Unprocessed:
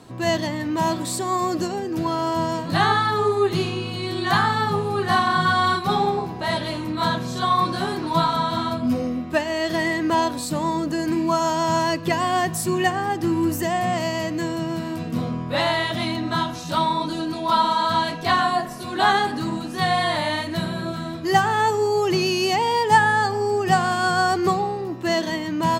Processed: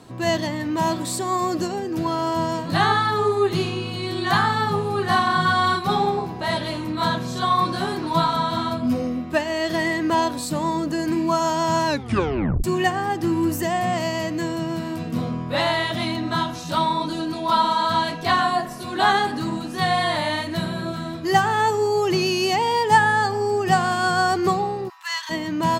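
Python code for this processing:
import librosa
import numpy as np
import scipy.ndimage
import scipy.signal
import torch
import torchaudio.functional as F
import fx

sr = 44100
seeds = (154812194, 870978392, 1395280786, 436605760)

y = fx.steep_highpass(x, sr, hz=880.0, slope=72, at=(24.88, 25.29), fade=0.02)
y = fx.edit(y, sr, fx.tape_stop(start_s=11.85, length_s=0.79), tone=tone)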